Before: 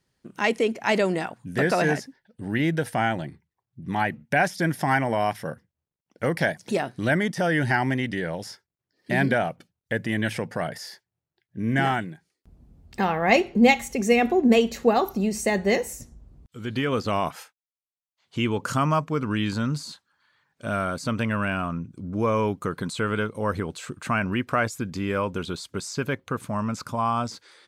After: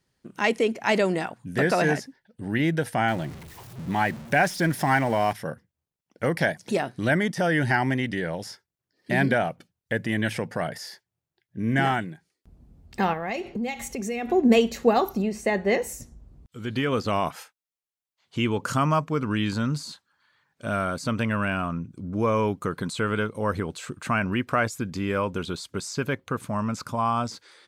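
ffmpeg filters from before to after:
-filter_complex "[0:a]asettb=1/sr,asplit=3[a][b][c];[a]atrim=end=3.084[d];[b]atrim=start=3.08:end=5.33,asetpts=PTS-STARTPTS,afade=t=in:d=0.004:c=qsin,afade=t=out:st=2.246:d=0.004:c=qsin,aeval=exprs='val(0)+0.5*0.015*sgn(val(0))':c=same[e];[c]atrim=start=5.326[f];[d][e]acrossfade=d=0.004:c1=hsin:c2=qsin[g];[g][f]acrossfade=d=0.004:c1=qsin:c2=hsin,asettb=1/sr,asplit=3[h][i][j];[h]atrim=end=13.134[k];[i]atrim=start=13.13:end=14.29,asetpts=PTS-STARTPTS,afade=t=in:d=0.004:c=qsin,afade=t=out:st=1.156:d=0.004:c=qsin,acompressor=threshold=-28dB:ratio=4:attack=3.2:release=140:knee=1:detection=peak[l];[j]atrim=start=14.286[m];[k][l]acrossfade=d=0.004:c1=hsin:c2=qsin[n];[n][m]acrossfade=d=0.004:c1=qsin:c2=hsin,asettb=1/sr,asplit=3[o][p][q];[o]atrim=end=15.224[r];[p]atrim=start=15.22:end=15.82,asetpts=PTS-STARTPTS,afade=t=in:d=0.004:c=qsin,afade=t=out:st=0.596:d=0.004:c=qsin,bass=f=250:g=-4,treble=f=4k:g=-11[s];[q]atrim=start=15.816[t];[r][s]acrossfade=d=0.004:c1=hsin:c2=qsin[u];[u][t]acrossfade=d=0.004:c1=qsin:c2=hsin"

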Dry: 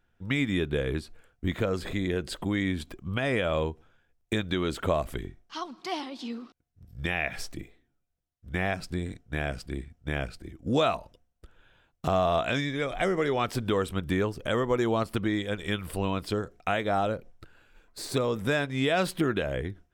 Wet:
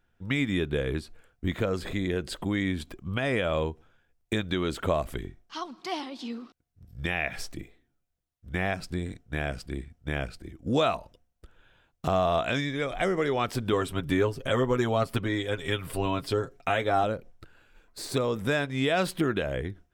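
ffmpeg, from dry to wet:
-filter_complex "[0:a]asettb=1/sr,asplit=3[a][b][c];[a]atrim=end=13.724[d];[b]atrim=start=13.72:end=17.04,asetpts=PTS-STARTPTS,afade=t=in:d=0.004:c=qsin,afade=t=out:st=3.316:d=0.004:c=qsin,aecho=1:1:7.4:0.65,atrim=end_sample=146412[e];[c]atrim=start=17.036[f];[d][e]acrossfade=d=0.004:c1=hsin:c2=qsin[g];[g][f]acrossfade=d=0.004:c1=qsin:c2=hsin"

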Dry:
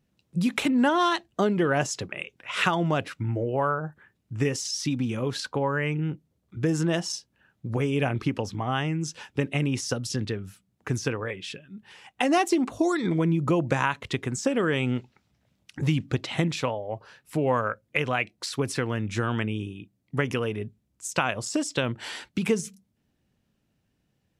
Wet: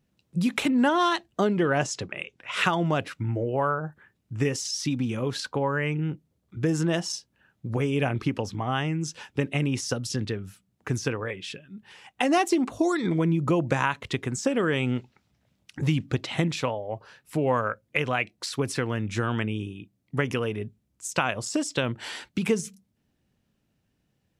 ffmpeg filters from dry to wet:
-filter_complex "[0:a]asettb=1/sr,asplit=3[a][b][c];[a]atrim=end=1.484[d];[b]atrim=start=1.48:end=2.52,asetpts=PTS-STARTPTS,afade=t=in:d=0.004:c=qsin,afade=t=out:st=1.036:d=0.004:c=qsin,lowpass=9.2k[e];[c]atrim=start=2.516[f];[d][e]acrossfade=d=0.004:c1=hsin:c2=qsin[g];[g][f]acrossfade=d=0.004:c1=qsin:c2=hsin"

